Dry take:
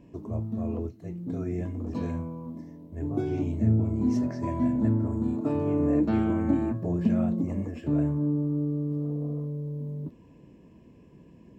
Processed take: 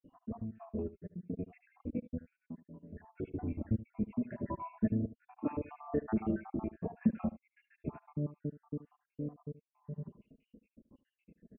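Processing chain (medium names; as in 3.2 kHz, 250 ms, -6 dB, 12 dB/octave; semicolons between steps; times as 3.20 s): random holes in the spectrogram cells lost 75%; flange 0.55 Hz, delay 3.6 ms, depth 1.6 ms, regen +28%; dynamic bell 270 Hz, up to -6 dB, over -41 dBFS, Q 4.2; elliptic low-pass 2.7 kHz; delay 75 ms -17 dB; trim +1 dB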